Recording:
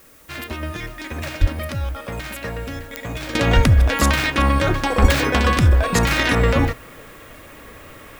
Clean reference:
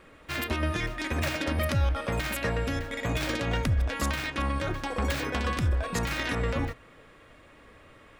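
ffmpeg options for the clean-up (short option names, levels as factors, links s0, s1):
-filter_complex "[0:a]adeclick=t=4,asplit=3[s0][s1][s2];[s0]afade=t=out:st=1.4:d=0.02[s3];[s1]highpass=f=140:w=0.5412,highpass=f=140:w=1.3066,afade=t=in:st=1.4:d=0.02,afade=t=out:st=1.52:d=0.02[s4];[s2]afade=t=in:st=1.52:d=0.02[s5];[s3][s4][s5]amix=inputs=3:normalize=0,asplit=3[s6][s7][s8];[s6]afade=t=out:st=3.55:d=0.02[s9];[s7]highpass=f=140:w=0.5412,highpass=f=140:w=1.3066,afade=t=in:st=3.55:d=0.02,afade=t=out:st=3.67:d=0.02[s10];[s8]afade=t=in:st=3.67:d=0.02[s11];[s9][s10][s11]amix=inputs=3:normalize=0,asplit=3[s12][s13][s14];[s12]afade=t=out:st=5.01:d=0.02[s15];[s13]highpass=f=140:w=0.5412,highpass=f=140:w=1.3066,afade=t=in:st=5.01:d=0.02,afade=t=out:st=5.13:d=0.02[s16];[s14]afade=t=in:st=5.13:d=0.02[s17];[s15][s16][s17]amix=inputs=3:normalize=0,agate=range=0.0891:threshold=0.0224,asetnsamples=n=441:p=0,asendcmd='3.35 volume volume -12dB',volume=1"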